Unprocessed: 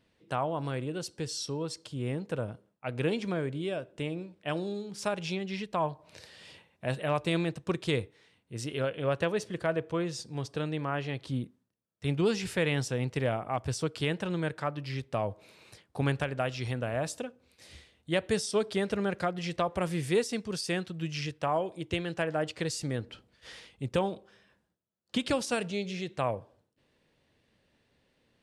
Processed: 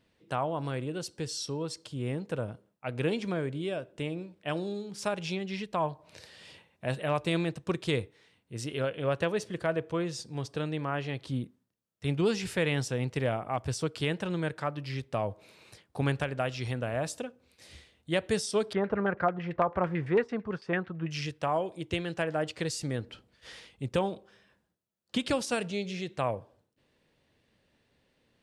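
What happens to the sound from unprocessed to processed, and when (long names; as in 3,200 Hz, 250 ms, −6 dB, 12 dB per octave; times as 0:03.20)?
0:18.73–0:21.11: auto-filter low-pass saw down 9 Hz 870–2,100 Hz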